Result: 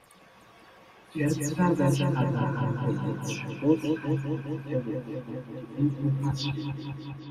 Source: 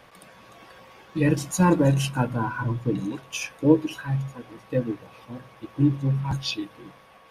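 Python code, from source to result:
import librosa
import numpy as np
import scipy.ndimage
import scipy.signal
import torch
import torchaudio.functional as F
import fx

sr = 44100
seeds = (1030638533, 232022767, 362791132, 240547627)

p1 = fx.spec_delay(x, sr, highs='early', ms=110)
p2 = p1 + fx.echo_wet_lowpass(p1, sr, ms=205, feedback_pct=75, hz=2600.0, wet_db=-6, dry=0)
y = F.gain(torch.from_numpy(p2), -5.5).numpy()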